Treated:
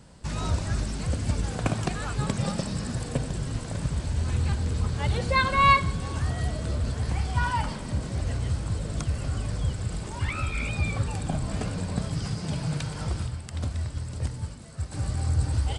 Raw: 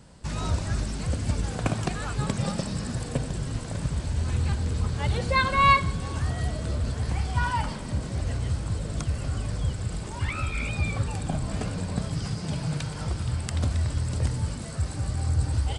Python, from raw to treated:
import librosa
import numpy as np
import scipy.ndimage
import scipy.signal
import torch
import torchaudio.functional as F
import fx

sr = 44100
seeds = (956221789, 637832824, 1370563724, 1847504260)

y = fx.upward_expand(x, sr, threshold_db=-34.0, expansion=1.5, at=(13.26, 14.91), fade=0.02)